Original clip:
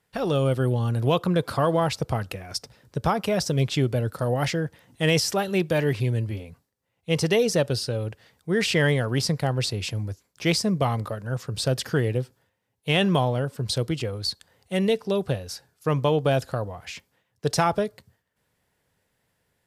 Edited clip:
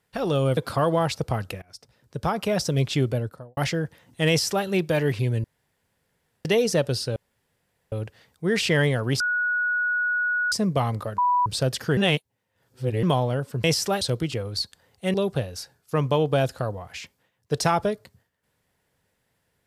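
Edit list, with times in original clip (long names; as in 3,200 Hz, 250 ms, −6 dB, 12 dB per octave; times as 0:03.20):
0:00.57–0:01.38: remove
0:02.43–0:03.30: fade in, from −22.5 dB
0:03.87–0:04.38: fade out and dull
0:05.10–0:05.47: duplicate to 0:13.69
0:06.25–0:07.26: fill with room tone
0:07.97: splice in room tone 0.76 s
0:09.25–0:10.57: beep over 1,460 Hz −21 dBFS
0:11.23–0:11.51: beep over 984 Hz −17.5 dBFS
0:12.02–0:13.08: reverse
0:14.82–0:15.07: remove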